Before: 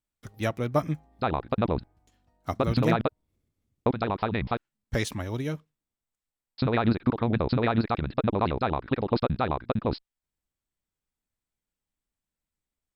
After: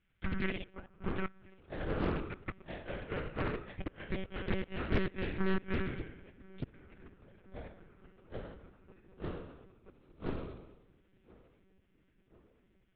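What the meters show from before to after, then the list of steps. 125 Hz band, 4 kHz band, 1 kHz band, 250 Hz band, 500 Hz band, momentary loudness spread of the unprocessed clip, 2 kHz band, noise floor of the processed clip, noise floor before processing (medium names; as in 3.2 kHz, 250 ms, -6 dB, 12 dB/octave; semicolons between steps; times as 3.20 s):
-12.5 dB, -10.5 dB, -16.5 dB, -11.0 dB, -12.0 dB, 8 LU, -6.0 dB, -71 dBFS, under -85 dBFS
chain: spectral sustain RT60 1.07 s; treble shelf 3 kHz +5 dB; reverse; compression 6:1, threshold -37 dBFS, peak gain reduction 20 dB; reverse; inverted gate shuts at -29 dBFS, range -37 dB; valve stage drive 37 dB, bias 0.6; static phaser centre 1.9 kHz, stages 4; ever faster or slower copies 100 ms, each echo +2 st, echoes 3; on a send: filtered feedback delay 1033 ms, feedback 70%, low-pass 2.1 kHz, level -24 dB; on the sum: monotone LPC vocoder at 8 kHz 190 Hz; loudspeaker Doppler distortion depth 0.73 ms; trim +16 dB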